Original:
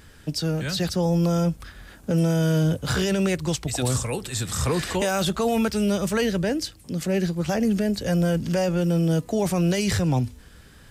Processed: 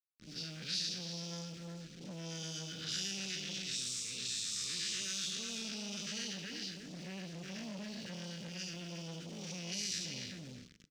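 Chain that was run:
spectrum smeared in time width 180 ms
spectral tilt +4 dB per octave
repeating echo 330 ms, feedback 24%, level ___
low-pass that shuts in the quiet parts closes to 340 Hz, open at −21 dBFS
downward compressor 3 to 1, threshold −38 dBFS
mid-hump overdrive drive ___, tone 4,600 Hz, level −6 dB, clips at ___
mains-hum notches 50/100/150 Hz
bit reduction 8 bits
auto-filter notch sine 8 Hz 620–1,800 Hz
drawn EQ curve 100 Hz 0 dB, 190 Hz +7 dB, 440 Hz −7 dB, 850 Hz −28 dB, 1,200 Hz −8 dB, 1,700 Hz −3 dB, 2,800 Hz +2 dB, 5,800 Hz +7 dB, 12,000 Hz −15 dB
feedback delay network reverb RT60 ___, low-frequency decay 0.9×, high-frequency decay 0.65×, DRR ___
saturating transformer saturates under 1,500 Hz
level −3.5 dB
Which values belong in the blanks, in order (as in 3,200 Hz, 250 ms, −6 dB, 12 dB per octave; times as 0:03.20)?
−7 dB, 9 dB, −21.5 dBFS, 1 s, 19 dB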